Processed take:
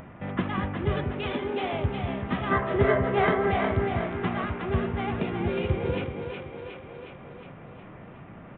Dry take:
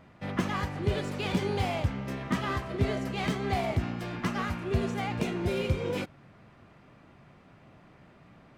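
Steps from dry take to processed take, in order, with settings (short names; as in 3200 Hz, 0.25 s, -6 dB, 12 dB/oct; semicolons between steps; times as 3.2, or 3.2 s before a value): Wiener smoothing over 9 samples; 1.04–1.73 Chebyshev high-pass 230 Hz, order 5; 2.51–3.51 spectral gain 350–2200 Hz +9 dB; on a send: split-band echo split 390 Hz, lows 0.189 s, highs 0.363 s, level -5 dB; on the sum: downsampling 8000 Hz; in parallel at +1 dB: upward compressor, threshold -30 dBFS; on the sum: gain -5.5 dB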